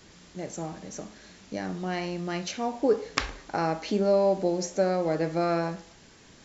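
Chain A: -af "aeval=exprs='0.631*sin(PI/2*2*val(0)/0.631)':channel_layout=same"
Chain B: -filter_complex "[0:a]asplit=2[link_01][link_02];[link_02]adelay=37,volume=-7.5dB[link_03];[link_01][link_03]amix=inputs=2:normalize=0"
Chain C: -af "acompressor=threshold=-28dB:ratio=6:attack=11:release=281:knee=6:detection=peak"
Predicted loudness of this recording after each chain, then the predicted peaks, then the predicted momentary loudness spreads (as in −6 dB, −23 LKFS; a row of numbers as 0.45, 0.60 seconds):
−19.0, −27.5, −34.5 LKFS; −4.0, −4.5, −6.5 dBFS; 16, 17, 13 LU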